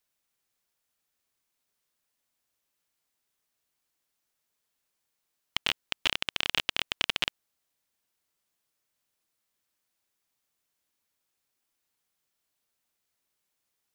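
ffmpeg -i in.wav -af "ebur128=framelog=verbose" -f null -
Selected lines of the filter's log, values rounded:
Integrated loudness:
  I:         -30.0 LUFS
  Threshold: -40.0 LUFS
Loudness range:
  LRA:         7.7 LU
  Threshold: -53.5 LUFS
  LRA low:   -39.2 LUFS
  LRA high:  -31.5 LUFS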